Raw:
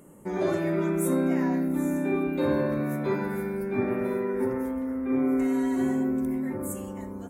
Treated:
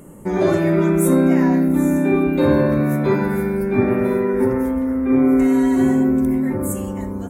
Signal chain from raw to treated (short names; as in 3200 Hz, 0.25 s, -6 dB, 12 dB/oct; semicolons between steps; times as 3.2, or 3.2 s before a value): low shelf 120 Hz +9 dB; gain +8.5 dB